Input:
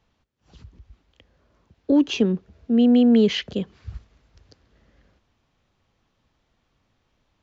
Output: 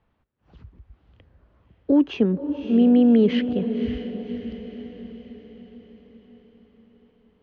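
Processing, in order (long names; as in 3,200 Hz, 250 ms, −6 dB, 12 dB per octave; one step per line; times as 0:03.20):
low-pass filter 2,100 Hz 12 dB per octave
feedback delay with all-pass diffusion 559 ms, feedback 53%, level −9.5 dB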